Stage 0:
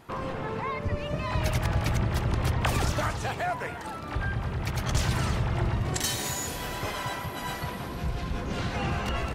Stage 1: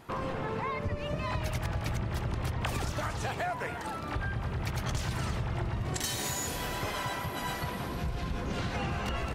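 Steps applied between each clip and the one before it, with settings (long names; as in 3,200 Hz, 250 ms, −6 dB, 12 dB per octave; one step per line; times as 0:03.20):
downward compressor, threshold −29 dBFS, peak gain reduction 8.5 dB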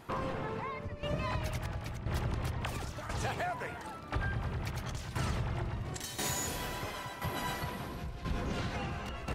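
shaped tremolo saw down 0.97 Hz, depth 70%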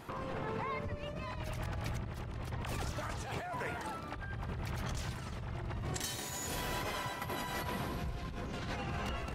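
compressor whose output falls as the input rises −39 dBFS, ratio −1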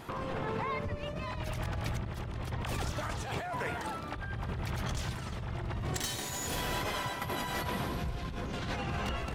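stylus tracing distortion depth 0.021 ms
parametric band 3,400 Hz +2.5 dB 0.24 octaves
level +3.5 dB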